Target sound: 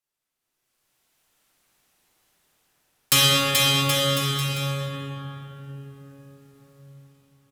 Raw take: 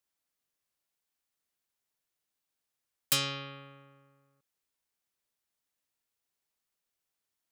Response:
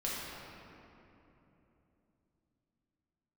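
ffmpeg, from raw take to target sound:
-filter_complex "[0:a]dynaudnorm=f=110:g=13:m=16dB,aecho=1:1:430|774|1049|1269|1445:0.631|0.398|0.251|0.158|0.1[a];[1:a]atrim=start_sample=2205,asetrate=29547,aresample=44100[b];[a][b]afir=irnorm=-1:irlink=0,volume=-2.5dB"

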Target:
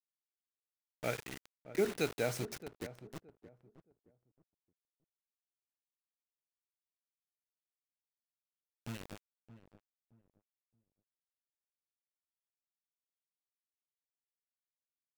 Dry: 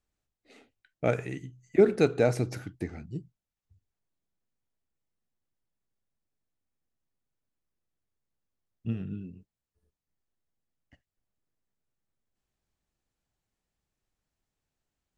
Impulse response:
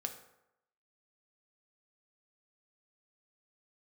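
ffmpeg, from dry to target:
-filter_complex "[0:a]tiltshelf=f=1.2k:g=-5.5,acrusher=bits=5:mix=0:aa=0.000001,asplit=2[a][b];[b]adelay=621,lowpass=f=890:p=1,volume=-13.5dB,asplit=2[c][d];[d]adelay=621,lowpass=f=890:p=1,volume=0.27,asplit=2[e][f];[f]adelay=621,lowpass=f=890:p=1,volume=0.27[g];[a][c][e][g]amix=inputs=4:normalize=0,volume=-7.5dB"

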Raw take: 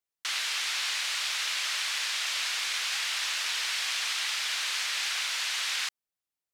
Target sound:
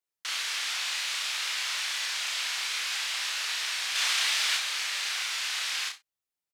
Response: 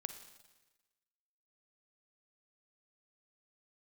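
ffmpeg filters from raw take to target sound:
-filter_complex "[0:a]asettb=1/sr,asplit=3[a][b][c];[a]atrim=end=3.954[d];[b]atrim=start=3.95:end=4.57,asetpts=PTS-STARTPTS,afade=t=in:d=0.004:c=qsin,afade=t=out:st=0.616:d=0.004:c=qsin,acontrast=23[e];[c]atrim=start=4.566[f];[d][e]acrossfade=d=0.004:c1=hsin:c2=qsin[g];[g][f]acrossfade=d=0.004:c1=qsin:c2=hsin,aecho=1:1:31|66:0.668|0.211[h];[1:a]atrim=start_sample=2205,atrim=end_sample=3087[i];[h][i]afir=irnorm=-1:irlink=0"

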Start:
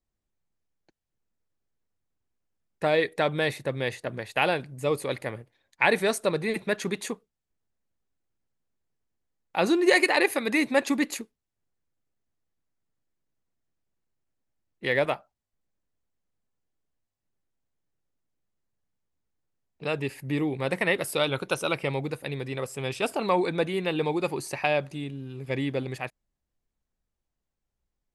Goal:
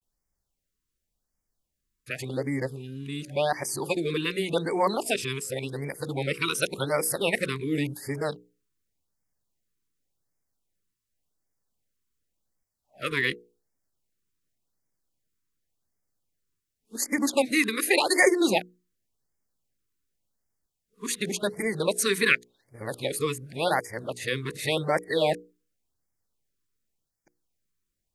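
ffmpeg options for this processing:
-af "areverse,highshelf=f=3.8k:g=9,bandreject=f=60:t=h:w=6,bandreject=f=120:t=h:w=6,bandreject=f=180:t=h:w=6,bandreject=f=240:t=h:w=6,bandreject=f=300:t=h:w=6,bandreject=f=360:t=h:w=6,bandreject=f=420:t=h:w=6,bandreject=f=480:t=h:w=6,afftfilt=real='re*(1-between(b*sr/1024,650*pow(3400/650,0.5+0.5*sin(2*PI*0.89*pts/sr))/1.41,650*pow(3400/650,0.5+0.5*sin(2*PI*0.89*pts/sr))*1.41))':imag='im*(1-between(b*sr/1024,650*pow(3400/650,0.5+0.5*sin(2*PI*0.89*pts/sr))/1.41,650*pow(3400/650,0.5+0.5*sin(2*PI*0.89*pts/sr))*1.41))':win_size=1024:overlap=0.75"

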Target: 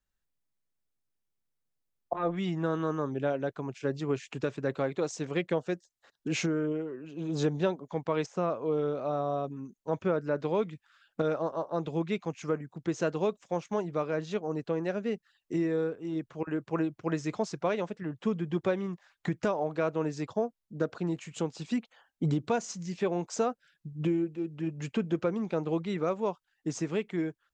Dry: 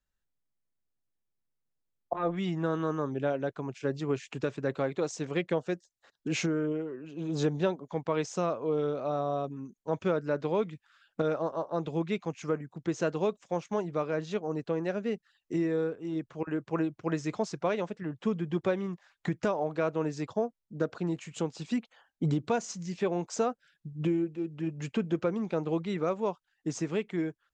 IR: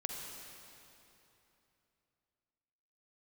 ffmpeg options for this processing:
-filter_complex "[0:a]asettb=1/sr,asplit=3[a][b][c];[a]atrim=end=8.264[d];[b]atrim=start=8.26:end=10.38,asetpts=PTS-STARTPTS,afade=t=in:d=0.004:c=qsin,afade=t=out:st=2.116:d=0.004:c=qsin,acrossover=split=2500[e][f];[f]acompressor=threshold=-57dB:ratio=4:attack=1:release=60[g];[e][g]amix=inputs=2:normalize=0[h];[c]atrim=start=10.376[i];[d][h]acrossfade=d=0.004:c1=hsin:c2=qsin[j];[j][i]acrossfade=d=0.004:c1=qsin:c2=hsin"

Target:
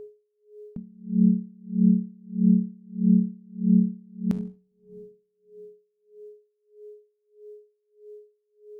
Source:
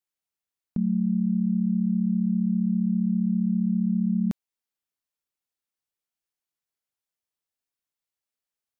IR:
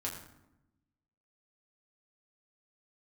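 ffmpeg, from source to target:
-filter_complex "[0:a]aeval=exprs='val(0)+0.00562*sin(2*PI*420*n/s)':c=same,asplit=2[a][b];[1:a]atrim=start_sample=2205,asetrate=22932,aresample=44100[c];[b][c]afir=irnorm=-1:irlink=0,volume=-13.5dB[d];[a][d]amix=inputs=2:normalize=0,aeval=exprs='val(0)*pow(10,-34*(0.5-0.5*cos(2*PI*1.6*n/s))/20)':c=same,volume=5.5dB"

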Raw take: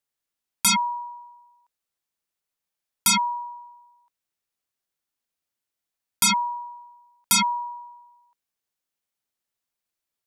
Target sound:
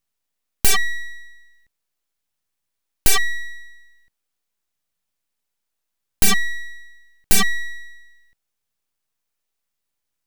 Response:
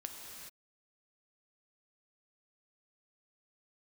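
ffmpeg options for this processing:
-filter_complex "[0:a]acrossover=split=230[a][b];[a]tremolo=f=0.8:d=0.95[c];[b]aeval=exprs='abs(val(0))':c=same[d];[c][d]amix=inputs=2:normalize=0,volume=7.5dB"

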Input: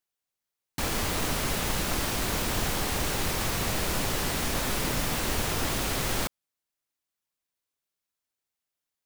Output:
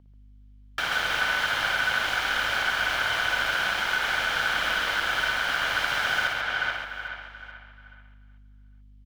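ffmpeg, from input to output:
-filter_complex "[0:a]bandreject=f=1.1k:w=5.8,asplit=2[a][b];[b]adelay=433,lowpass=f=2.2k:p=1,volume=-6dB,asplit=2[c][d];[d]adelay=433,lowpass=f=2.2k:p=1,volume=0.37,asplit=2[e][f];[f]adelay=433,lowpass=f=2.2k:p=1,volume=0.37,asplit=2[g][h];[h]adelay=433,lowpass=f=2.2k:p=1,volume=0.37[i];[c][e][g][i]amix=inputs=4:normalize=0[j];[a][j]amix=inputs=2:normalize=0,acompressor=threshold=-29dB:ratio=6,equalizer=f=400:t=o:w=0.33:g=-9,equalizer=f=800:t=o:w=0.33:g=3,equalizer=f=1.6k:t=o:w=0.33:g=9,equalizer=f=6.3k:t=o:w=0.33:g=-6,aeval=exprs='val(0)*sin(2*PI*1500*n/s)':c=same,aeval=exprs='val(0)+0.00355*(sin(2*PI*50*n/s)+sin(2*PI*2*50*n/s)/2+sin(2*PI*3*50*n/s)/3+sin(2*PI*4*50*n/s)/4+sin(2*PI*5*50*n/s)/5)':c=same,acrossover=split=470 5100:gain=0.224 1 0.158[k][l][m];[k][l][m]amix=inputs=3:normalize=0,asplit=2[n][o];[o]aecho=0:1:58|136|806:0.596|0.596|0.106[p];[n][p]amix=inputs=2:normalize=0,volume=8dB"

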